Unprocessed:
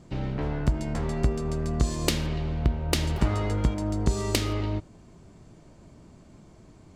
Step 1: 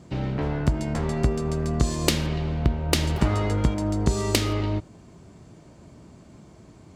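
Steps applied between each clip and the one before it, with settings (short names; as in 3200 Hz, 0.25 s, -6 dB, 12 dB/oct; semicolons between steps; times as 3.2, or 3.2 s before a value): HPF 56 Hz; gain +3.5 dB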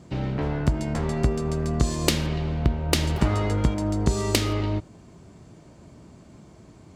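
nothing audible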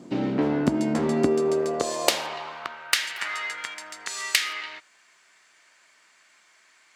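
high-pass sweep 260 Hz -> 1800 Hz, 1.15–3.08; gain +1.5 dB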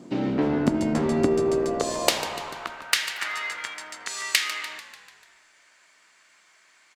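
frequency-shifting echo 0.147 s, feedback 57%, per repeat -61 Hz, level -13 dB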